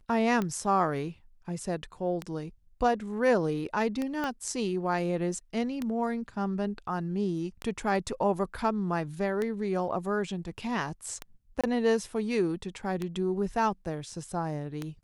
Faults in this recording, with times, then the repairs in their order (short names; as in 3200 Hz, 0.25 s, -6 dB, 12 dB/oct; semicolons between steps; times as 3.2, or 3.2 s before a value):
tick 33 1/3 rpm -18 dBFS
4.24 pop -18 dBFS
11.61–11.64 gap 26 ms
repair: de-click; interpolate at 11.61, 26 ms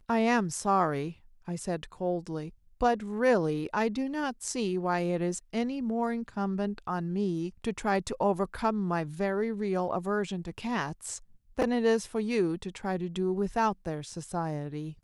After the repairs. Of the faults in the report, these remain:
4.24 pop